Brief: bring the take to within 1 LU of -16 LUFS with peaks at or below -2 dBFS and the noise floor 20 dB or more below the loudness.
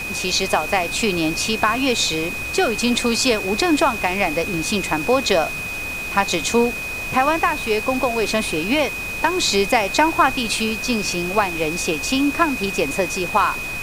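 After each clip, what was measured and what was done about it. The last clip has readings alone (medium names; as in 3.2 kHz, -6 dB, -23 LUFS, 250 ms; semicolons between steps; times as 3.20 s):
steady tone 2.5 kHz; tone level -26 dBFS; noise floor -28 dBFS; noise floor target -40 dBFS; loudness -19.5 LUFS; peak level -2.5 dBFS; loudness target -16.0 LUFS
-> band-stop 2.5 kHz, Q 30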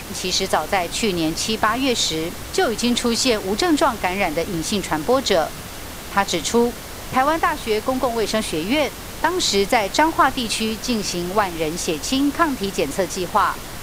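steady tone not found; noise floor -34 dBFS; noise floor target -41 dBFS
-> noise print and reduce 7 dB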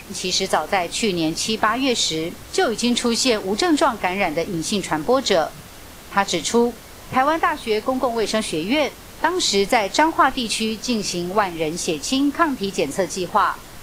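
noise floor -40 dBFS; noise floor target -41 dBFS
-> noise print and reduce 6 dB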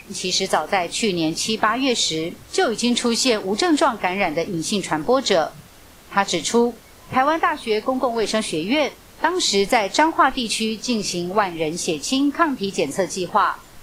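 noise floor -45 dBFS; loudness -20.5 LUFS; peak level -3.0 dBFS; loudness target -16.0 LUFS
-> trim +4.5 dB; peak limiter -2 dBFS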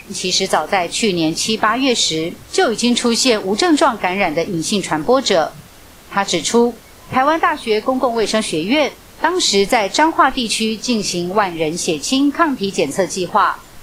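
loudness -16.5 LUFS; peak level -2.0 dBFS; noise floor -41 dBFS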